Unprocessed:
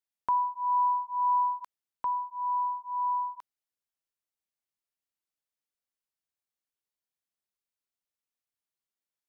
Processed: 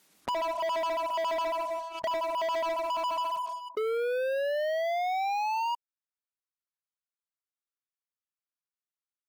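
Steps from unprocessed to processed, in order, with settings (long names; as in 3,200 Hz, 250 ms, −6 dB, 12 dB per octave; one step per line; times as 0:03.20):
pitch shifter gated in a rhythm −7 semitones, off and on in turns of 69 ms
high-pass filter sweep 190 Hz → 1,200 Hz, 0:02.03–0:02.98
on a send at −5 dB: convolution reverb RT60 0.55 s, pre-delay 47 ms
on the sum: sound drawn into the spectrogram rise, 0:03.77–0:05.75, 430–960 Hz −27 dBFS
downward compressor 6 to 1, threshold −37 dBFS, peak gain reduction 16.5 dB
treble cut that deepens with the level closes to 1,100 Hz, closed at −37 dBFS
gate on every frequency bin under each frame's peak −20 dB strong
leveller curve on the samples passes 5
background raised ahead of every attack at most 88 dB per second
level −2 dB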